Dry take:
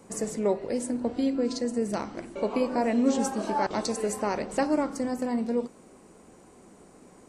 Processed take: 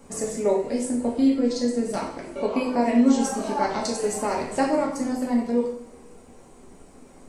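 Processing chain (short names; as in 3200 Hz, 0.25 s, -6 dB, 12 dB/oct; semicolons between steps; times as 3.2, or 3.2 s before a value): reverb removal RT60 0.56 s; added noise brown -58 dBFS; two-slope reverb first 0.58 s, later 2 s, DRR -2 dB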